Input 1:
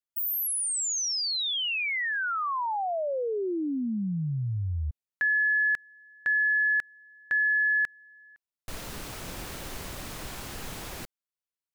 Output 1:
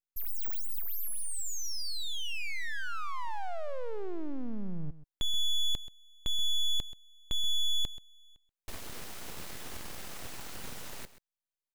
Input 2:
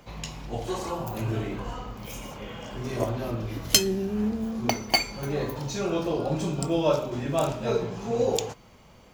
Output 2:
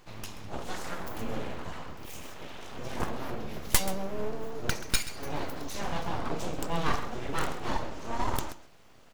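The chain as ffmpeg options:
-af "aeval=exprs='abs(val(0))':c=same,aecho=1:1:131:0.178,volume=0.75"

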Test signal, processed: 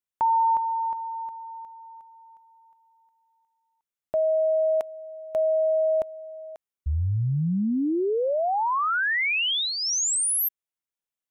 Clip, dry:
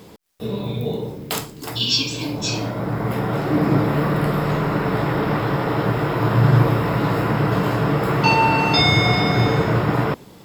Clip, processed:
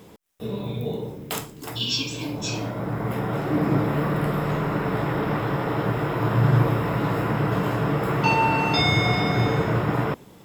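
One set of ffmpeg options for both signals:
-af "equalizer=f=4500:w=3.7:g=-6,volume=0.631"

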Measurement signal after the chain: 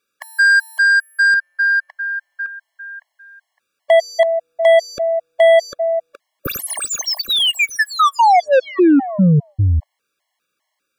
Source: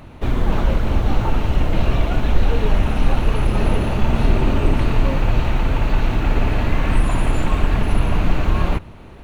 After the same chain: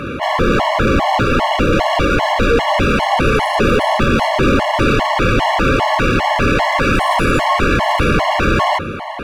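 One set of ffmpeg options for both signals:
-filter_complex "[0:a]asplit=2[s0][s1];[s1]highpass=f=720:p=1,volume=63.1,asoftclip=type=tanh:threshold=0.841[s2];[s0][s2]amix=inputs=2:normalize=0,lowpass=f=1800:p=1,volume=0.501,afftfilt=real='re*gt(sin(2*PI*2.5*pts/sr)*(1-2*mod(floor(b*sr/1024/560),2)),0)':imag='im*gt(sin(2*PI*2.5*pts/sr)*(1-2*mod(floor(b*sr/1024/560),2)),0)':win_size=1024:overlap=0.75,volume=0.891"

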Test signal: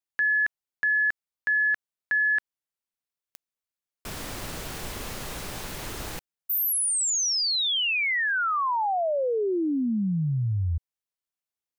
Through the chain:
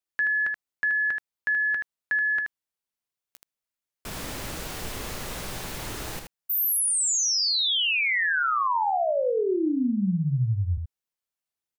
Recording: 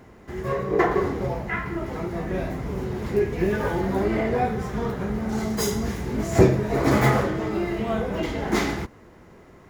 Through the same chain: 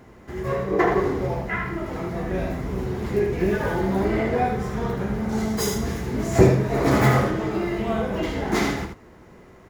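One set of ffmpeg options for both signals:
-af "aecho=1:1:16|78:0.178|0.501"

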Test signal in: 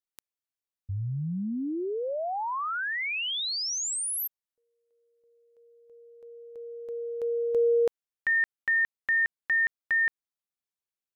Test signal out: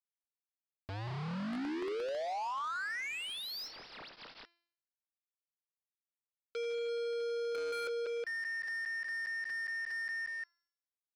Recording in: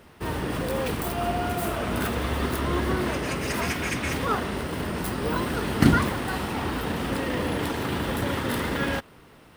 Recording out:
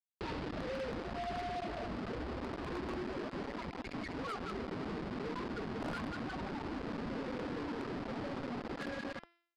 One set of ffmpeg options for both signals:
-af "aecho=1:1:181|362|543|724:0.376|0.117|0.0361|0.0112,acompressor=threshold=0.0178:ratio=8:attack=1.2:release=26:knee=1:detection=rms,afftfilt=real='re*gte(hypot(re,im),0.0447)':imag='im*gte(hypot(re,im),0.0447)':win_size=1024:overlap=0.75,acrusher=bits=6:mix=0:aa=0.000001,acontrast=31,aeval=exprs='(mod(21.1*val(0)+1,2)-1)/21.1':c=same,aresample=11025,aresample=44100,equalizer=f=86:t=o:w=1.9:g=-9,bandreject=f=341.8:t=h:w=4,bandreject=f=683.6:t=h:w=4,bandreject=f=1025.4:t=h:w=4,bandreject=f=1367.2:t=h:w=4,bandreject=f=1709:t=h:w=4,bandreject=f=2050.8:t=h:w=4,bandreject=f=2392.6:t=h:w=4,bandreject=f=2734.4:t=h:w=4,bandreject=f=3076.2:t=h:w=4,bandreject=f=3418:t=h:w=4,bandreject=f=3759.8:t=h:w=4,bandreject=f=4101.6:t=h:w=4,bandreject=f=4443.4:t=h:w=4,bandreject=f=4785.2:t=h:w=4,bandreject=f=5127:t=h:w=4,bandreject=f=5468.8:t=h:w=4,bandreject=f=5810.6:t=h:w=4,bandreject=f=6152.4:t=h:w=4,bandreject=f=6494.2:t=h:w=4,bandreject=f=6836:t=h:w=4,bandreject=f=7177.8:t=h:w=4,bandreject=f=7519.6:t=h:w=4,bandreject=f=7861.4:t=h:w=4,bandreject=f=8203.2:t=h:w=4,bandreject=f=8545:t=h:w=4,bandreject=f=8886.8:t=h:w=4,bandreject=f=9228.6:t=h:w=4,bandreject=f=9570.4:t=h:w=4,bandreject=f=9912.2:t=h:w=4,bandreject=f=10254:t=h:w=4,bandreject=f=10595.8:t=h:w=4,bandreject=f=10937.6:t=h:w=4,bandreject=f=11279.4:t=h:w=4,asoftclip=type=tanh:threshold=0.0224,adynamicequalizer=threshold=0.00224:dfrequency=3800:dqfactor=0.78:tfrequency=3800:tqfactor=0.78:attack=5:release=100:ratio=0.375:range=3:mode=cutabove:tftype=bell"

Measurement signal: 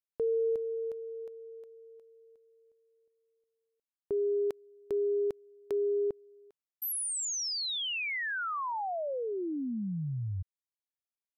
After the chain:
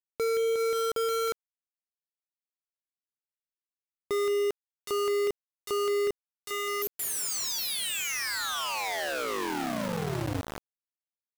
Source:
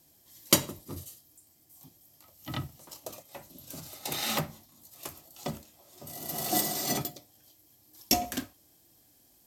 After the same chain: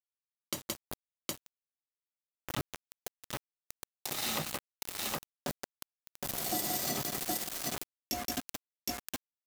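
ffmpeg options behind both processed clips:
-af "aecho=1:1:172|765:0.501|0.668,aeval=exprs='val(0)*gte(abs(val(0)),0.0316)':c=same,acompressor=threshold=0.0355:ratio=12:attack=0.11:release=314:knee=1:detection=peak,volume=1.88"

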